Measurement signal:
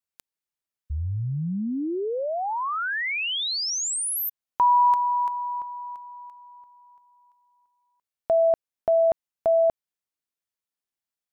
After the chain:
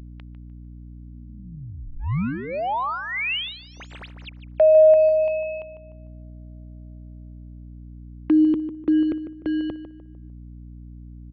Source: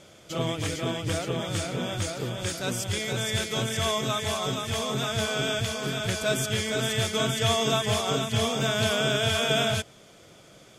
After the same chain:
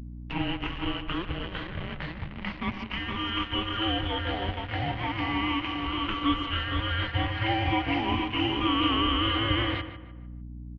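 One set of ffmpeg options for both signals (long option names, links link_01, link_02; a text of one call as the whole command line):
ffmpeg -i in.wav -filter_complex "[0:a]afftfilt=real='re*pow(10,9/40*sin(2*PI*(0.91*log(max(b,1)*sr/1024/100)/log(2)-(0.38)*(pts-256)/sr)))':imag='im*pow(10,9/40*sin(2*PI*(0.91*log(max(b,1)*sr/1024/100)/log(2)-(0.38)*(pts-256)/sr)))':win_size=1024:overlap=0.75,acrossover=split=480[link_01][link_02];[link_02]acrusher=bits=4:mix=0:aa=0.5[link_03];[link_01][link_03]amix=inputs=2:normalize=0,highpass=frequency=330:width_type=q:width=0.5412,highpass=frequency=330:width_type=q:width=1.307,lowpass=frequency=3400:width_type=q:width=0.5176,lowpass=frequency=3400:width_type=q:width=0.7071,lowpass=frequency=3400:width_type=q:width=1.932,afreqshift=-350,asplit=2[link_04][link_05];[link_05]adelay=150,lowpass=frequency=2200:poles=1,volume=-10dB,asplit=2[link_06][link_07];[link_07]adelay=150,lowpass=frequency=2200:poles=1,volume=0.33,asplit=2[link_08][link_09];[link_09]adelay=150,lowpass=frequency=2200:poles=1,volume=0.33,asplit=2[link_10][link_11];[link_11]adelay=150,lowpass=frequency=2200:poles=1,volume=0.33[link_12];[link_04][link_06][link_08][link_10][link_12]amix=inputs=5:normalize=0,aeval=exprs='val(0)+0.00447*(sin(2*PI*60*n/s)+sin(2*PI*2*60*n/s)/2+sin(2*PI*3*60*n/s)/3+sin(2*PI*4*60*n/s)/4+sin(2*PI*5*60*n/s)/5)':channel_layout=same,acompressor=mode=upward:threshold=-31dB:ratio=2.5:attack=25:release=629:knee=2.83:detection=peak" out.wav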